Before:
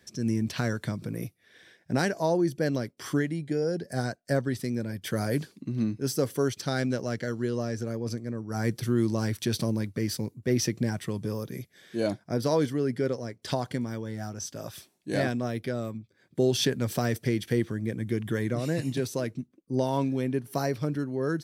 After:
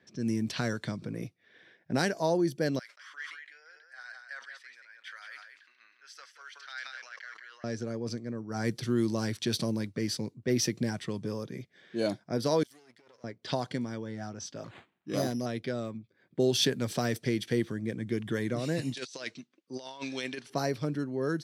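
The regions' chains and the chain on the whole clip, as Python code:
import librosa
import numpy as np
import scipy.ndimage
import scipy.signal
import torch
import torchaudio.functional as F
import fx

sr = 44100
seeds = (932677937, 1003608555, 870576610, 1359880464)

y = fx.chain(x, sr, fx.ladder_highpass(hz=1300.0, resonance_pct=40),
    fx.echo_single(ms=180, db=-7.0),
    fx.sustainer(db_per_s=56.0), at=(2.79, 7.64))
y = fx.chain(y, sr, fx.halfwave_gain(db=-12.0),
    fx.pre_emphasis(coefficient=0.97),
    fx.over_compress(threshold_db=-55.0, ratio=-0.5), at=(12.63, 13.24))
y = fx.chain(y, sr, fx.env_phaser(low_hz=520.0, high_hz=2100.0, full_db=-23.5),
    fx.resample_bad(factor=8, down='none', up='hold'), at=(14.64, 15.46))
y = fx.chain(y, sr, fx.weighting(curve='ITU-R 468'),
    fx.over_compress(threshold_db=-36.0, ratio=-0.5), at=(18.94, 20.5))
y = scipy.signal.sosfilt(scipy.signal.butter(2, 120.0, 'highpass', fs=sr, output='sos'), y)
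y = fx.env_lowpass(y, sr, base_hz=2900.0, full_db=-23.5)
y = fx.dynamic_eq(y, sr, hz=4000.0, q=1.2, threshold_db=-51.0, ratio=4.0, max_db=4)
y = y * librosa.db_to_amplitude(-2.0)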